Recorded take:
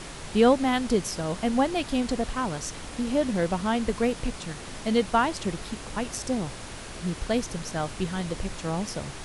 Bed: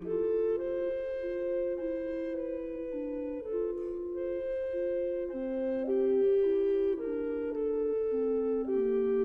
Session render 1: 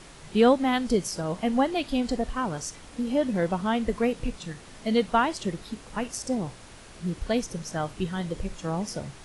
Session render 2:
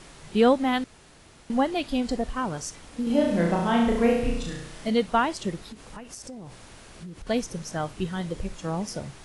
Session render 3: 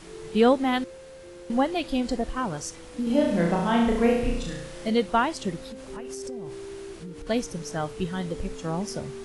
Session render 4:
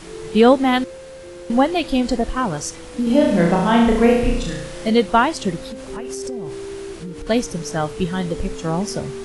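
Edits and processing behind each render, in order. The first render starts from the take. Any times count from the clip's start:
noise print and reduce 8 dB
0.84–1.5 room tone; 3.03–4.9 flutter echo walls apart 5.9 m, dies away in 0.79 s; 5.69–7.27 compressor, threshold -37 dBFS
add bed -11 dB
gain +7.5 dB; limiter -2 dBFS, peak gain reduction 1.5 dB

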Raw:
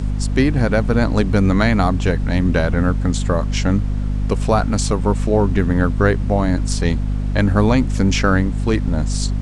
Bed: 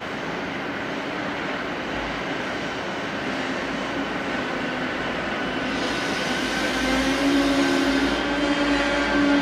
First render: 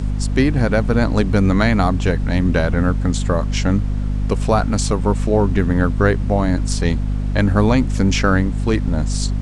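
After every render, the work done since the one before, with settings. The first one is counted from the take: nothing audible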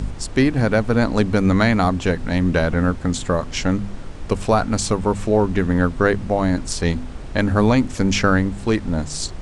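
de-hum 50 Hz, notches 5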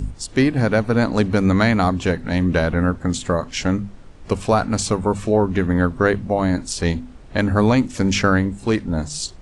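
noise print and reduce 10 dB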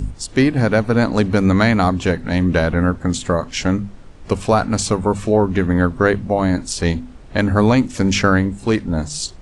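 gain +2 dB; limiter -2 dBFS, peak gain reduction 1 dB

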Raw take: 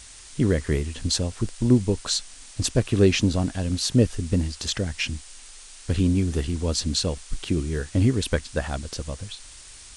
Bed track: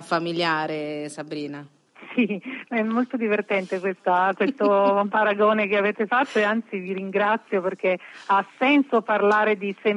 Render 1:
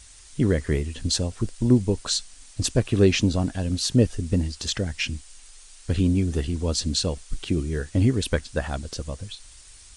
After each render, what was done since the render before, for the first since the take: denoiser 6 dB, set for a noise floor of -45 dBFS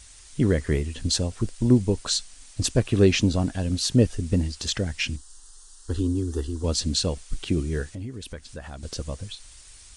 5.16–6.64 fixed phaser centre 620 Hz, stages 6; 7.92–8.83 compressor 2.5:1, threshold -39 dBFS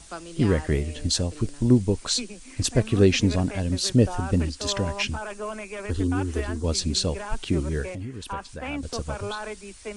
add bed track -14.5 dB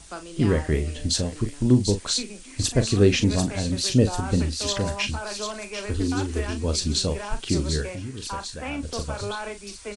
doubler 39 ms -9.5 dB; on a send: thin delay 0.743 s, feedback 57%, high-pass 3600 Hz, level -5 dB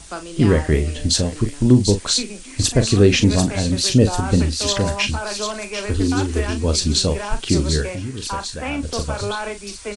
gain +6 dB; limiter -3 dBFS, peak gain reduction 3 dB

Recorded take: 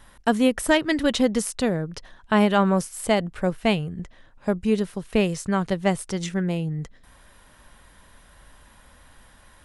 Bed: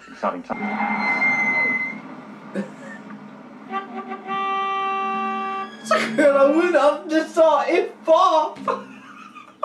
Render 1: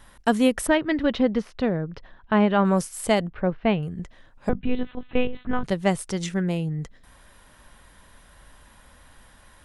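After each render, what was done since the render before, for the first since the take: 0.67–2.65 air absorption 290 m; 3.27–3.83 Gaussian blur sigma 2.9 samples; 4.49–5.64 monotone LPC vocoder at 8 kHz 250 Hz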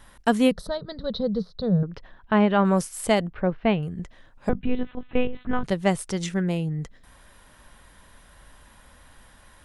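0.51–1.83 EQ curve 110 Hz 0 dB, 180 Hz +10 dB, 310 Hz -20 dB, 440 Hz 0 dB, 860 Hz -12 dB, 1300 Hz -9 dB, 2700 Hz -30 dB, 4000 Hz +8 dB, 7100 Hz -18 dB; 4.66–5.41 air absorption 160 m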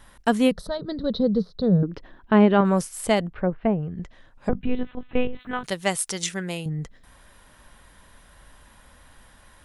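0.79–2.61 bell 310 Hz +11.5 dB; 3.3–4.53 treble ducked by the level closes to 790 Hz, closed at -17.5 dBFS; 5.39–6.66 tilt +3 dB/oct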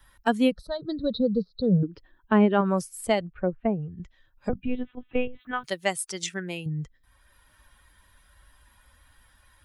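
per-bin expansion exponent 1.5; three-band squash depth 40%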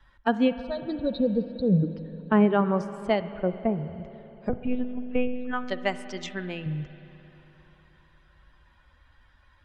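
air absorption 170 m; spring tank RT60 3.7 s, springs 44/60 ms, chirp 25 ms, DRR 12 dB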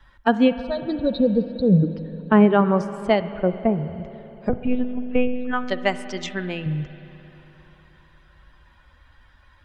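gain +5.5 dB

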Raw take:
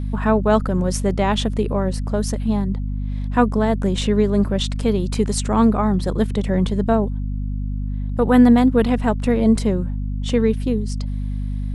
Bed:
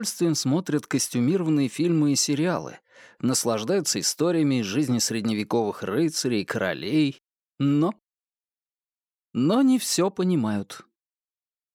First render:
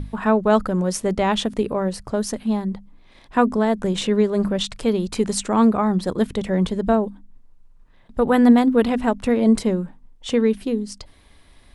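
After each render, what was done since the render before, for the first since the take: notches 50/100/150/200/250 Hz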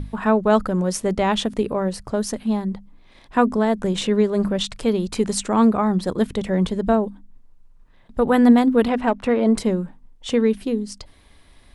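8.88–9.57 overdrive pedal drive 11 dB, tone 1600 Hz, clips at -6 dBFS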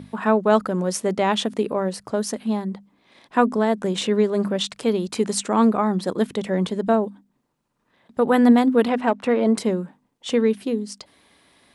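HPF 190 Hz 12 dB/oct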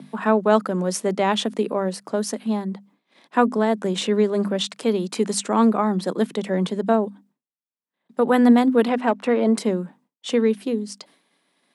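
expander -49 dBFS; steep high-pass 150 Hz 48 dB/oct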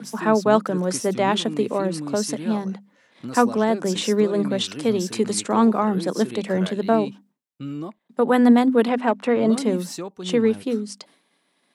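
add bed -10 dB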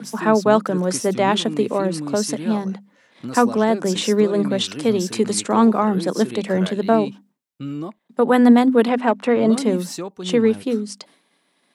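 gain +2.5 dB; limiter -2 dBFS, peak gain reduction 2 dB

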